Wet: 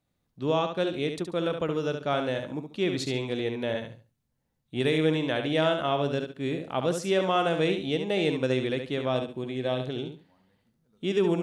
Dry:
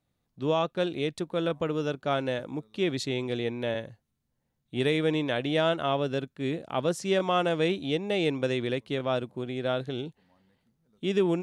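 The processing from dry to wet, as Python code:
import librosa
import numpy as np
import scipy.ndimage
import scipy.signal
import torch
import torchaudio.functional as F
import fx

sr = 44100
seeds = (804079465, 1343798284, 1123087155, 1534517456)

p1 = fx.notch(x, sr, hz=1400.0, q=6.5, at=(9.09, 9.88))
y = p1 + fx.echo_feedback(p1, sr, ms=70, feedback_pct=23, wet_db=-7.0, dry=0)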